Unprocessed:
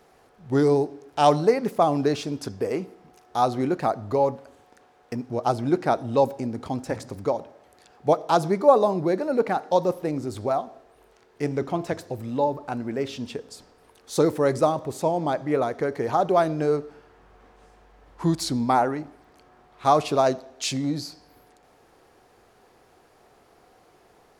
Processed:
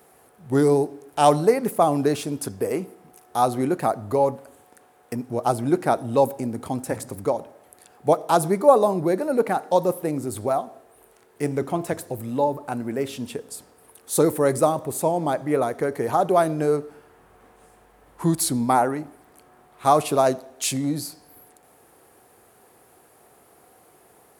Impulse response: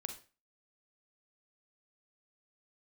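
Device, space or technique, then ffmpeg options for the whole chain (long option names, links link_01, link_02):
budget condenser microphone: -af "highpass=72,highshelf=frequency=7500:width_type=q:width=1.5:gain=11.5,volume=1.5dB"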